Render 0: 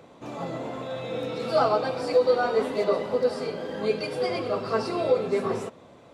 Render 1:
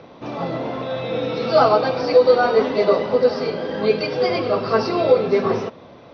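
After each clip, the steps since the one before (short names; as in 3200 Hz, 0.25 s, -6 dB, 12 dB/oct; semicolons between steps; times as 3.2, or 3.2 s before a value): steep low-pass 5900 Hz 96 dB/oct; gain +7.5 dB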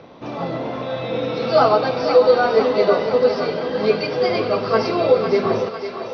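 thinning echo 0.502 s, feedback 64%, high-pass 430 Hz, level -8 dB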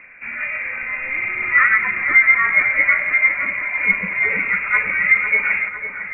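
inverted band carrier 2600 Hz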